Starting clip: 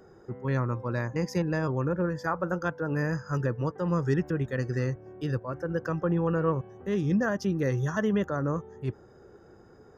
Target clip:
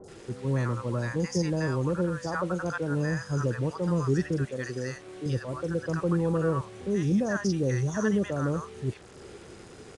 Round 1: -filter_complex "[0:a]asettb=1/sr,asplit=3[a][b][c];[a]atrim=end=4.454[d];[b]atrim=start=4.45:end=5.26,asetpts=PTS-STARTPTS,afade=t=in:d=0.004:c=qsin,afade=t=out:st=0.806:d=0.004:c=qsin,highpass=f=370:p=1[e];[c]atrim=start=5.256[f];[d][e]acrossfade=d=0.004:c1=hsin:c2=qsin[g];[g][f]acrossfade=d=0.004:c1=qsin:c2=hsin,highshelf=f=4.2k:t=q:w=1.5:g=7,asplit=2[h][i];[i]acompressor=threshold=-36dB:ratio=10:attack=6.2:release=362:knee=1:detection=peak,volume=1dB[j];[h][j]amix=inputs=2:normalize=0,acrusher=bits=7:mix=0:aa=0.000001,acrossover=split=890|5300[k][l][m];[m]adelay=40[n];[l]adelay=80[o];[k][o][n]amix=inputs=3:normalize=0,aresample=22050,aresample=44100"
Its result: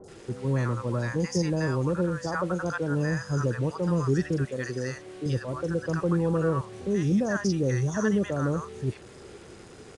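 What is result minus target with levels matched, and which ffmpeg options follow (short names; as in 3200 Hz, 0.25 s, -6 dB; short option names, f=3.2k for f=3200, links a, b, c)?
compressor: peak gain reduction -8 dB
-filter_complex "[0:a]asettb=1/sr,asplit=3[a][b][c];[a]atrim=end=4.454[d];[b]atrim=start=4.45:end=5.26,asetpts=PTS-STARTPTS,afade=t=in:d=0.004:c=qsin,afade=t=out:st=0.806:d=0.004:c=qsin,highpass=f=370:p=1[e];[c]atrim=start=5.256[f];[d][e]acrossfade=d=0.004:c1=hsin:c2=qsin[g];[g][f]acrossfade=d=0.004:c1=qsin:c2=hsin,highshelf=f=4.2k:t=q:w=1.5:g=7,asplit=2[h][i];[i]acompressor=threshold=-45dB:ratio=10:attack=6.2:release=362:knee=1:detection=peak,volume=1dB[j];[h][j]amix=inputs=2:normalize=0,acrusher=bits=7:mix=0:aa=0.000001,acrossover=split=890|5300[k][l][m];[m]adelay=40[n];[l]adelay=80[o];[k][o][n]amix=inputs=3:normalize=0,aresample=22050,aresample=44100"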